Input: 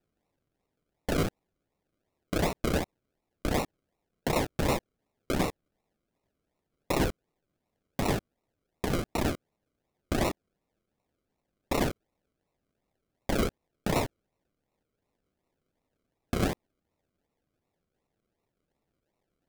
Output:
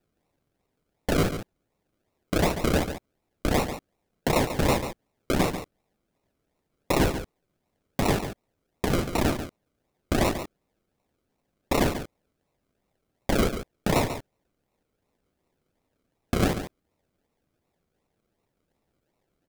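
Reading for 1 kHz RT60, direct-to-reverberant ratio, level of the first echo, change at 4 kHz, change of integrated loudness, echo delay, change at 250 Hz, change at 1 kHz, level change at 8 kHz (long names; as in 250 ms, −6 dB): no reverb audible, no reverb audible, −10.0 dB, +5.0 dB, +4.5 dB, 141 ms, +5.0 dB, +5.0 dB, +5.0 dB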